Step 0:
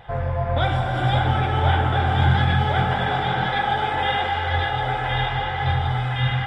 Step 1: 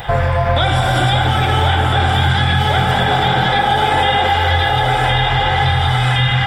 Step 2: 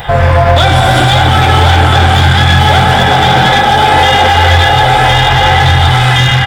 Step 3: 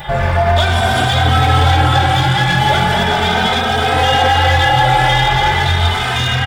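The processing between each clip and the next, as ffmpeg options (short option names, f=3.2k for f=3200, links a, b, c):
-filter_complex "[0:a]acrossover=split=920|4000[a][b][c];[a]acompressor=threshold=-29dB:ratio=4[d];[b]acompressor=threshold=-37dB:ratio=4[e];[c]acompressor=threshold=-51dB:ratio=4[f];[d][e][f]amix=inputs=3:normalize=0,aemphasis=mode=production:type=75kf,asplit=2[g][h];[h]alimiter=limit=-23dB:level=0:latency=1,volume=2.5dB[i];[g][i]amix=inputs=2:normalize=0,volume=8.5dB"
-filter_complex "[0:a]dynaudnorm=f=130:g=3:m=11.5dB,volume=8dB,asoftclip=hard,volume=-8dB,asplit=2[a][b];[b]adelay=13,volume=-12dB[c];[a][c]amix=inputs=2:normalize=0,volume=5dB"
-filter_complex "[0:a]asplit=2[a][b];[b]adelay=3,afreqshift=0.38[c];[a][c]amix=inputs=2:normalize=1,volume=-2.5dB"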